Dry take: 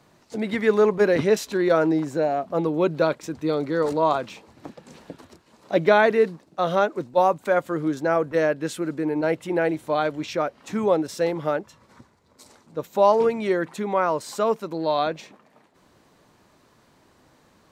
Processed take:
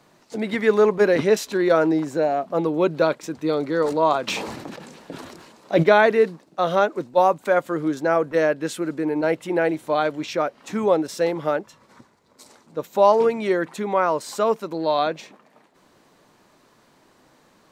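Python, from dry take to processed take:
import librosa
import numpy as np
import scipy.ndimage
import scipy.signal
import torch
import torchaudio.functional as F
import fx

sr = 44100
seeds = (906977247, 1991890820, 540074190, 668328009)

y = fx.peak_eq(x, sr, hz=71.0, db=-10.5, octaves=1.5)
y = fx.sustainer(y, sr, db_per_s=39.0, at=(4.27, 5.82), fade=0.02)
y = y * 10.0 ** (2.0 / 20.0)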